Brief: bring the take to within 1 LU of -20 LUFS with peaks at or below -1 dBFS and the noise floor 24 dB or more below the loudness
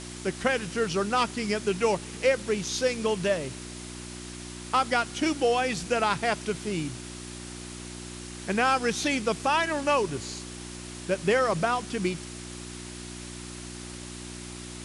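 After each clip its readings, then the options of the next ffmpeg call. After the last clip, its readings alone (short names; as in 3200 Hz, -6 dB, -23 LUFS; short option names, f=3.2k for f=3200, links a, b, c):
hum 60 Hz; harmonics up to 360 Hz; hum level -40 dBFS; noise floor -41 dBFS; noise floor target -51 dBFS; loudness -27.0 LUFS; peak -12.0 dBFS; loudness target -20.0 LUFS
-> -af "bandreject=f=60:t=h:w=4,bandreject=f=120:t=h:w=4,bandreject=f=180:t=h:w=4,bandreject=f=240:t=h:w=4,bandreject=f=300:t=h:w=4,bandreject=f=360:t=h:w=4"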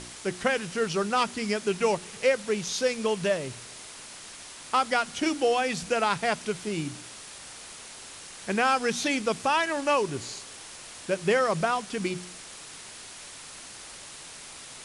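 hum none; noise floor -44 dBFS; noise floor target -51 dBFS
-> -af "afftdn=nr=7:nf=-44"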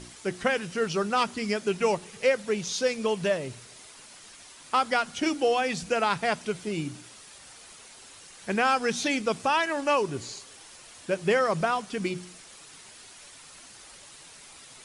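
noise floor -49 dBFS; noise floor target -51 dBFS
-> -af "afftdn=nr=6:nf=-49"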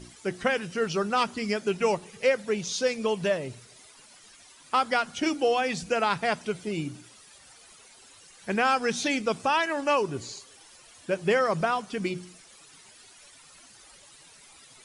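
noise floor -53 dBFS; loudness -27.0 LUFS; peak -11.5 dBFS; loudness target -20.0 LUFS
-> -af "volume=7dB"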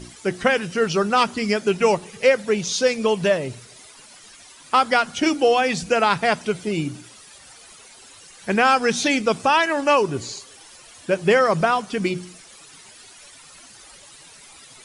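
loudness -20.0 LUFS; peak -4.5 dBFS; noise floor -46 dBFS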